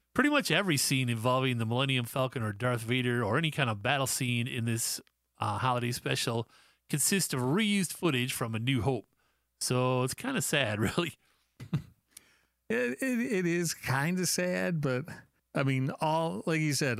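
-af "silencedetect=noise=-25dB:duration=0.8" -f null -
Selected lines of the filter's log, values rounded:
silence_start: 11.76
silence_end: 12.70 | silence_duration: 0.94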